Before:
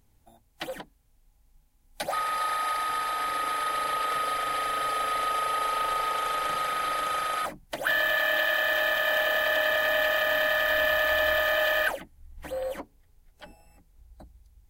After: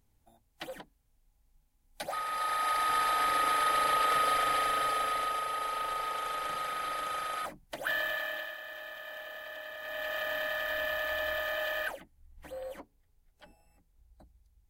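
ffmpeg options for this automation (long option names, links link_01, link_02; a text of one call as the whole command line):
ffmpeg -i in.wav -af "volume=10.5dB,afade=type=in:start_time=2.26:duration=0.74:silence=0.421697,afade=type=out:start_time=4.37:duration=1.09:silence=0.421697,afade=type=out:start_time=7.95:duration=0.62:silence=0.251189,afade=type=in:start_time=9.78:duration=0.42:silence=0.334965" out.wav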